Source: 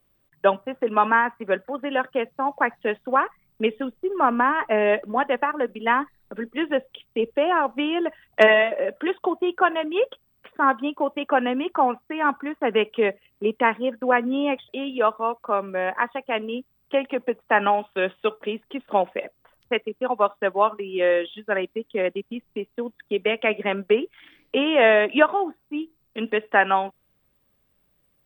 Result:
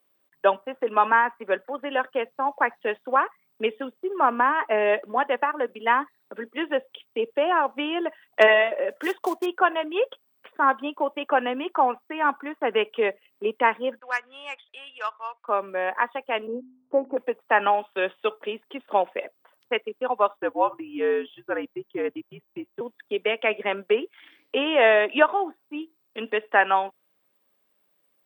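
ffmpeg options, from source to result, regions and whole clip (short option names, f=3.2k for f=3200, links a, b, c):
-filter_complex "[0:a]asettb=1/sr,asplit=3[a][b][c];[a]atrim=end=8.904[d];[b]atrim=start=8.9:end=9.46,asetpts=PTS-STARTPTS,afade=t=in:d=0.004:c=qsin,afade=t=out:st=0.556:d=0.004:c=qsin,equalizer=f=1.9k:w=5.3:g=5,acrusher=bits=5:mode=log:mix=0:aa=0.000001[e];[c]atrim=start=9.456[f];[d][e]acrossfade=d=0.004:c1=hsin:c2=qsin[g];[g][f]acrossfade=d=0.004:c1=qsin:c2=hsin,asettb=1/sr,asplit=3[h][i][j];[h]atrim=end=13.994[k];[i]atrim=start=13.99:end=15.48,asetpts=PTS-STARTPTS,afade=t=in:d=0.004:c=qsin,afade=t=out:st=1.486:d=0.004:c=qsin,highpass=1.5k,adynamicsmooth=sensitivity=2.5:basefreq=2.8k[l];[j]atrim=start=15.476[m];[k][l]acrossfade=d=0.004:c1=hsin:c2=qsin[n];[n][m]acrossfade=d=0.004:c1=qsin:c2=hsin,asettb=1/sr,asplit=3[o][p][q];[o]atrim=end=16.474[r];[p]atrim=start=16.47:end=17.17,asetpts=PTS-STARTPTS,afade=t=in:d=0.004:c=qsin,afade=t=out:st=0.696:d=0.004:c=qsin,lowpass=f=1k:w=0.5412,lowpass=f=1k:w=1.3066,lowshelf=f=300:g=7,bandreject=f=51.15:t=h:w=4,bandreject=f=102.3:t=h:w=4,bandreject=f=153.45:t=h:w=4,bandreject=f=204.6:t=h:w=4,bandreject=f=255.75:t=h:w=4,bandreject=f=306.9:t=h:w=4,bandreject=f=358.05:t=h:w=4,bandreject=f=409.2:t=h:w=4[s];[q]atrim=start=17.166[t];[r][s]acrossfade=d=0.004:c1=hsin:c2=qsin[u];[u][t]acrossfade=d=0.004:c1=qsin:c2=hsin,asettb=1/sr,asplit=3[v][w][x];[v]atrim=end=20.374[y];[w]atrim=start=20.37:end=22.81,asetpts=PTS-STARTPTS,afade=t=in:d=0.004:c=qsin,afade=t=out:st=2.436:d=0.004:c=qsin,highpass=200,equalizer=f=3.8k:w=0.4:g=-7.5,afreqshift=-80[z];[x]atrim=start=22.806[aa];[y][z]acrossfade=d=0.004:c1=hsin:c2=qsin[ab];[ab][aa]acrossfade=d=0.004:c1=qsin:c2=hsin,highpass=330,equalizer=f=940:t=o:w=0.23:g=2,volume=-1dB"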